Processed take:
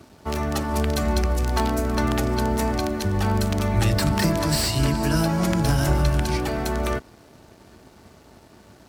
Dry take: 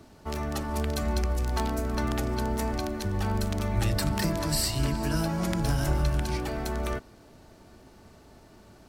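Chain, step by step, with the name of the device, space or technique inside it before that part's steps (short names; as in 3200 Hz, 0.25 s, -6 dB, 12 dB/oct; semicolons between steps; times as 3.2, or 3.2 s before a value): early transistor amplifier (crossover distortion -59.5 dBFS; slew limiter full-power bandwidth 190 Hz); HPF 54 Hz; gain +7 dB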